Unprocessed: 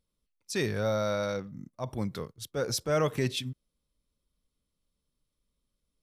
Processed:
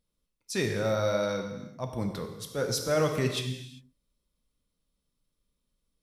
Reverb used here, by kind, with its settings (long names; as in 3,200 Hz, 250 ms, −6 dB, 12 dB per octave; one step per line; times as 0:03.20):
reverb whose tail is shaped and stops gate 420 ms falling, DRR 4 dB